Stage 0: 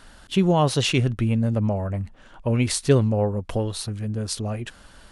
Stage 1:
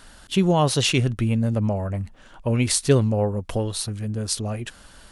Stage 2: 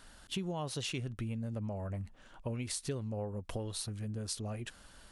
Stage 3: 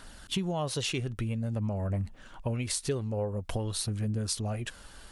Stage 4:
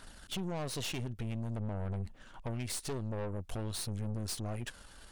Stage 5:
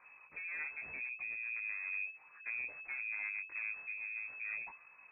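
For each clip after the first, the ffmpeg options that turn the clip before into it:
ffmpeg -i in.wav -af "highshelf=frequency=4800:gain=6" out.wav
ffmpeg -i in.wav -af "acompressor=threshold=-26dB:ratio=5,volume=-9dB" out.wav
ffmpeg -i in.wav -af "aphaser=in_gain=1:out_gain=1:delay=2.6:decay=0.25:speed=0.5:type=triangular,volume=6dB" out.wav
ffmpeg -i in.wav -af "aeval=exprs='(tanh(50.1*val(0)+0.7)-tanh(0.7))/50.1':channel_layout=same" out.wav
ffmpeg -i in.wav -af "flanger=delay=16:depth=3.6:speed=0.73,lowpass=frequency=2200:width_type=q:width=0.5098,lowpass=frequency=2200:width_type=q:width=0.6013,lowpass=frequency=2200:width_type=q:width=0.9,lowpass=frequency=2200:width_type=q:width=2.563,afreqshift=-2600,volume=-3dB" out.wav

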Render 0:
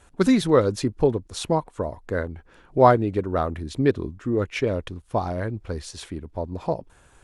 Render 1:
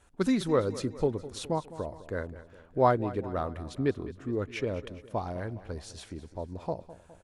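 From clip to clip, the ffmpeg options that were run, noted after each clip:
ffmpeg -i in.wav -af "aecho=1:1:206|412|618|824|1030:0.158|0.084|0.0445|0.0236|0.0125,volume=-8dB" out.wav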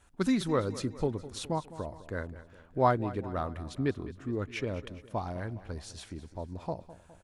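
ffmpeg -i in.wav -af "equalizer=frequency=470:width_type=o:width=0.93:gain=-4.5" out.wav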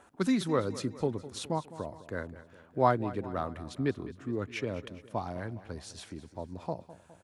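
ffmpeg -i in.wav -filter_complex "[0:a]highpass=99,acrossover=split=220|1500[link_01][link_02][link_03];[link_02]acompressor=mode=upward:threshold=-52dB:ratio=2.5[link_04];[link_01][link_04][link_03]amix=inputs=3:normalize=0" out.wav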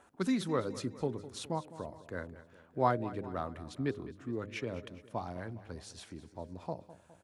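ffmpeg -i in.wav -af "bandreject=frequency=102.7:width_type=h:width=4,bandreject=frequency=205.4:width_type=h:width=4,bandreject=frequency=308.1:width_type=h:width=4,bandreject=frequency=410.8:width_type=h:width=4,bandreject=frequency=513.5:width_type=h:width=4,bandreject=frequency=616.2:width_type=h:width=4,volume=-3.5dB" out.wav

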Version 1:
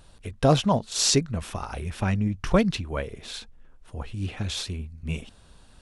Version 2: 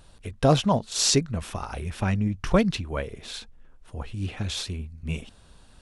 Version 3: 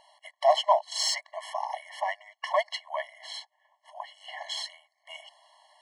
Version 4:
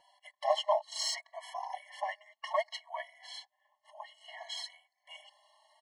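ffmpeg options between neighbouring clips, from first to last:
ffmpeg -i in.wav -af anull out.wav
ffmpeg -i in.wav -filter_complex "[0:a]asplit=2[link_01][link_02];[link_02]highpass=frequency=720:poles=1,volume=13dB,asoftclip=type=tanh:threshold=-4.5dB[link_03];[link_01][link_03]amix=inputs=2:normalize=0,lowpass=frequency=2000:poles=1,volume=-6dB,afftfilt=real='re*eq(mod(floor(b*sr/1024/560),2),1)':imag='im*eq(mod(floor(b*sr/1024/560),2),1)':win_size=1024:overlap=0.75" out.wav
ffmpeg -i in.wav -filter_complex "[0:a]asplit=2[link_01][link_02];[link_02]adelay=3.6,afreqshift=0.62[link_03];[link_01][link_03]amix=inputs=2:normalize=1,volume=-3.5dB" out.wav

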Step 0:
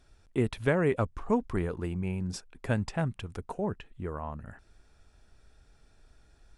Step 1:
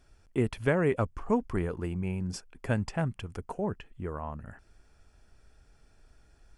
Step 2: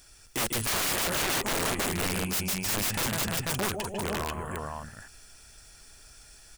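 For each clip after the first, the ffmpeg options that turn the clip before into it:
ffmpeg -i in.wav -af "bandreject=frequency=3800:width=6.2" out.wav
ffmpeg -i in.wav -af "aecho=1:1:146|154|300|348|491:0.299|0.376|0.237|0.447|0.596,crystalizer=i=10:c=0,aeval=exprs='(mod(14.1*val(0)+1,2)-1)/14.1':channel_layout=same" out.wav

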